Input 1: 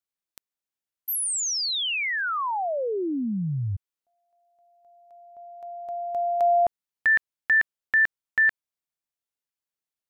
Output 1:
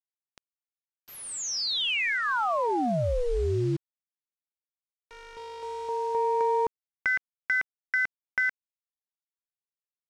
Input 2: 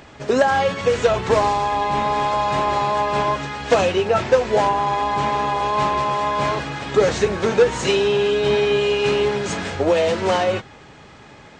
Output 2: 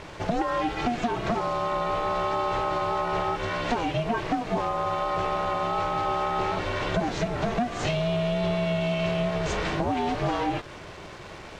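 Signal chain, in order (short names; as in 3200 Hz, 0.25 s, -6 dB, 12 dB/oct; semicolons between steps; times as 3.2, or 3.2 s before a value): bell 1600 Hz -3.5 dB 0.23 oct; compressor 16:1, threshold -24 dBFS; soft clip -19 dBFS; ring modulator 240 Hz; bit-crush 8-bit; air absorption 94 m; gain +5.5 dB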